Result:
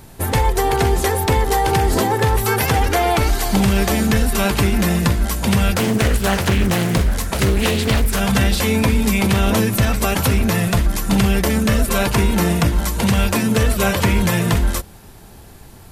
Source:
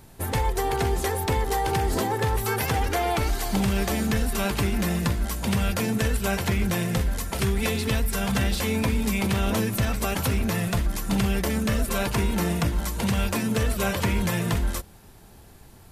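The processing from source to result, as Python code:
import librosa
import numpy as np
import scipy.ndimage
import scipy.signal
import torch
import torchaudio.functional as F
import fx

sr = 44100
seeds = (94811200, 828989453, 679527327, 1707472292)

y = fx.doppler_dist(x, sr, depth_ms=0.58, at=(5.75, 8.2))
y = F.gain(torch.from_numpy(y), 8.0).numpy()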